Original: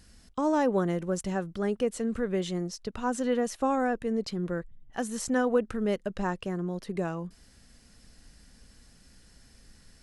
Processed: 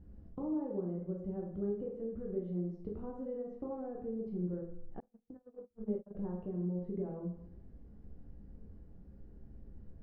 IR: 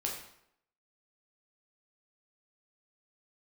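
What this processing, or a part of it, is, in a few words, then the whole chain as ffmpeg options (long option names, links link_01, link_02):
television next door: -filter_complex "[0:a]acompressor=threshold=-40dB:ratio=5,lowpass=440[link_01];[1:a]atrim=start_sample=2205[link_02];[link_01][link_02]afir=irnorm=-1:irlink=0,asettb=1/sr,asplit=3[link_03][link_04][link_05];[link_03]atrim=end=5.004[link_06];[link_04]atrim=start=5:end=6.15,asetpts=PTS-STARTPTS,afade=type=in:duration=0.004:curve=qsin,afade=type=out:start_time=1.146:duration=0.004:curve=qsin,agate=range=-40dB:threshold=-39dB:ratio=16:detection=peak[link_07];[link_05]atrim=start=6.146[link_08];[link_06][link_07]acrossfade=duration=0.004:curve1=hsin:curve2=qsin[link_09];[link_09][link_08]acrossfade=duration=0.004:curve1=qsin:curve2=hsin,volume=2dB"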